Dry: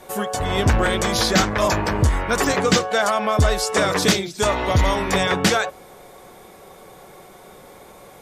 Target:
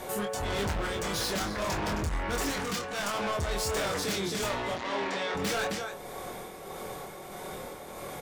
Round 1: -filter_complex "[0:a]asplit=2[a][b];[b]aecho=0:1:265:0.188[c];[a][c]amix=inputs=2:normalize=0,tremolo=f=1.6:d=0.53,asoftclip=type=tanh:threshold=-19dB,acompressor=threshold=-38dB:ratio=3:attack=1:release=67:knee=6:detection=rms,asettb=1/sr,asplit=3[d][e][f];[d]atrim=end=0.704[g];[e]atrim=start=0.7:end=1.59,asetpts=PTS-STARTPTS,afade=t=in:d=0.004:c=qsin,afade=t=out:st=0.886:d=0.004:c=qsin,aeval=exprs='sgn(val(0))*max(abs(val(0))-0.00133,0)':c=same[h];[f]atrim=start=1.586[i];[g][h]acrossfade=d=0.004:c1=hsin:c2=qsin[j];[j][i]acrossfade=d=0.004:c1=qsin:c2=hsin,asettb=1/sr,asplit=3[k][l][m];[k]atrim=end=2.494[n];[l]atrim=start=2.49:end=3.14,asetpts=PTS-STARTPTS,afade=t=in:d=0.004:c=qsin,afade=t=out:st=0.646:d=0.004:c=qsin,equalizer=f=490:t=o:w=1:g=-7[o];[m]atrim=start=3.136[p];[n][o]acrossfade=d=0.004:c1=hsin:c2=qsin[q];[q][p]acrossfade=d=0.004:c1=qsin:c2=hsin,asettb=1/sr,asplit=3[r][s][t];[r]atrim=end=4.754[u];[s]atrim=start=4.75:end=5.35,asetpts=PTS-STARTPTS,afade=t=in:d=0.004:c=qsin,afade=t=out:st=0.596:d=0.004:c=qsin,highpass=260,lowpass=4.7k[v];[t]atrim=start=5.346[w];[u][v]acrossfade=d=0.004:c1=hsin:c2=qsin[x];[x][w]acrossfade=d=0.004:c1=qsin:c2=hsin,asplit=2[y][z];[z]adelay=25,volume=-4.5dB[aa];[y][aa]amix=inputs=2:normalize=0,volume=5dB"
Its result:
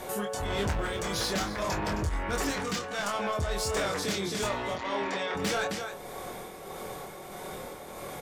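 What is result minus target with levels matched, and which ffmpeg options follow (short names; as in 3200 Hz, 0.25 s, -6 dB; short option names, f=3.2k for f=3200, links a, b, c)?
soft clip: distortion -6 dB
-filter_complex "[0:a]asplit=2[a][b];[b]aecho=0:1:265:0.188[c];[a][c]amix=inputs=2:normalize=0,tremolo=f=1.6:d=0.53,asoftclip=type=tanh:threshold=-28.5dB,acompressor=threshold=-38dB:ratio=3:attack=1:release=67:knee=6:detection=rms,asettb=1/sr,asplit=3[d][e][f];[d]atrim=end=0.704[g];[e]atrim=start=0.7:end=1.59,asetpts=PTS-STARTPTS,afade=t=in:d=0.004:c=qsin,afade=t=out:st=0.886:d=0.004:c=qsin,aeval=exprs='sgn(val(0))*max(abs(val(0))-0.00133,0)':c=same[h];[f]atrim=start=1.586[i];[g][h]acrossfade=d=0.004:c1=hsin:c2=qsin[j];[j][i]acrossfade=d=0.004:c1=qsin:c2=hsin,asettb=1/sr,asplit=3[k][l][m];[k]atrim=end=2.494[n];[l]atrim=start=2.49:end=3.14,asetpts=PTS-STARTPTS,afade=t=in:d=0.004:c=qsin,afade=t=out:st=0.646:d=0.004:c=qsin,equalizer=f=490:t=o:w=1:g=-7[o];[m]atrim=start=3.136[p];[n][o]acrossfade=d=0.004:c1=hsin:c2=qsin[q];[q][p]acrossfade=d=0.004:c1=qsin:c2=hsin,asettb=1/sr,asplit=3[r][s][t];[r]atrim=end=4.754[u];[s]atrim=start=4.75:end=5.35,asetpts=PTS-STARTPTS,afade=t=in:d=0.004:c=qsin,afade=t=out:st=0.596:d=0.004:c=qsin,highpass=260,lowpass=4.7k[v];[t]atrim=start=5.346[w];[u][v]acrossfade=d=0.004:c1=hsin:c2=qsin[x];[x][w]acrossfade=d=0.004:c1=qsin:c2=hsin,asplit=2[y][z];[z]adelay=25,volume=-4.5dB[aa];[y][aa]amix=inputs=2:normalize=0,volume=5dB"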